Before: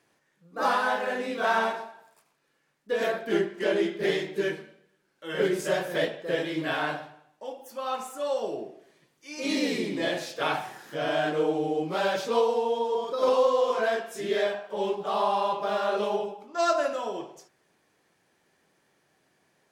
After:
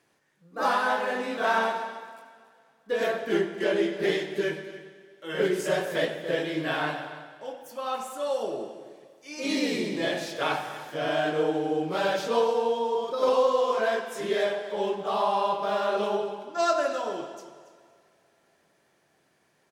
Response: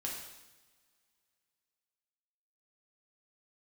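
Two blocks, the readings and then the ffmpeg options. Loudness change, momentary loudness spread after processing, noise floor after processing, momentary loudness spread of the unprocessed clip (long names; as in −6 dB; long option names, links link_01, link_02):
+0.5 dB, 13 LU, −68 dBFS, 12 LU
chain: -filter_complex "[0:a]aecho=1:1:281:0.168,asplit=2[link_01][link_02];[1:a]atrim=start_sample=2205,asetrate=23373,aresample=44100,adelay=95[link_03];[link_02][link_03]afir=irnorm=-1:irlink=0,volume=-17dB[link_04];[link_01][link_04]amix=inputs=2:normalize=0"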